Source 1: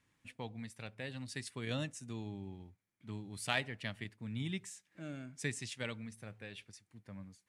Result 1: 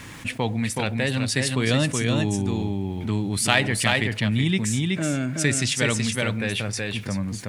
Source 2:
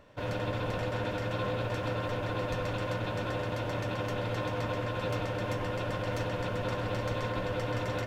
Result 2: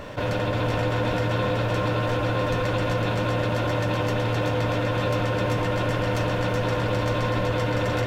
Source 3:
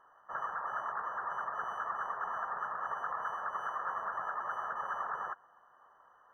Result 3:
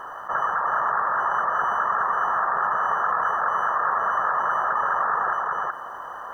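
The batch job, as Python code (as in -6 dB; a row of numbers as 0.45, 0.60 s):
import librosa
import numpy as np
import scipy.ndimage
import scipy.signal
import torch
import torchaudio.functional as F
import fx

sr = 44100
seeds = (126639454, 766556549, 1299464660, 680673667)

p1 = x + fx.echo_single(x, sr, ms=374, db=-4.5, dry=0)
p2 = fx.env_flatten(p1, sr, amount_pct=50)
y = p2 * 10.0 ** (-24 / 20.0) / np.sqrt(np.mean(np.square(p2)))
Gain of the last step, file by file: +13.5, +5.5, +11.5 dB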